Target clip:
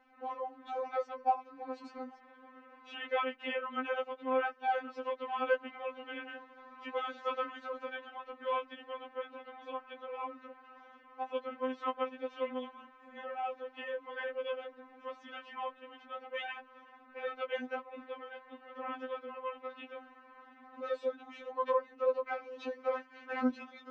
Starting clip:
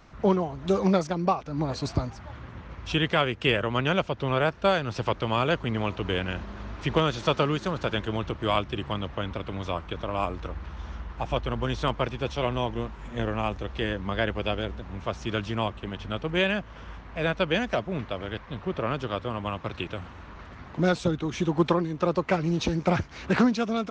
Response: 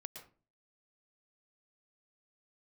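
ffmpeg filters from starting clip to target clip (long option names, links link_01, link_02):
-filter_complex "[0:a]acrossover=split=300 2600:gain=0.0891 1 0.0891[link_01][link_02][link_03];[link_01][link_02][link_03]amix=inputs=3:normalize=0,asplit=3[link_04][link_05][link_06];[link_04]afade=type=out:start_time=7.77:duration=0.02[link_07];[link_05]tremolo=f=150:d=0.261,afade=type=in:start_time=7.77:duration=0.02,afade=type=out:start_time=8.36:duration=0.02[link_08];[link_06]afade=type=in:start_time=8.36:duration=0.02[link_09];[link_07][link_08][link_09]amix=inputs=3:normalize=0,afftfilt=real='re*3.46*eq(mod(b,12),0)':imag='im*3.46*eq(mod(b,12),0)':win_size=2048:overlap=0.75,volume=-5.5dB"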